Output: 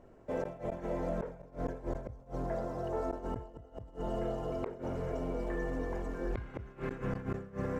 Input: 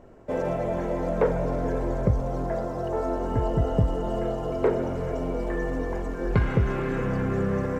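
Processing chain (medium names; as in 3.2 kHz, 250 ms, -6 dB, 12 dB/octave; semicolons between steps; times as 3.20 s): inverted gate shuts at -17 dBFS, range -27 dB; decay stretcher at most 100 dB/s; trim -7.5 dB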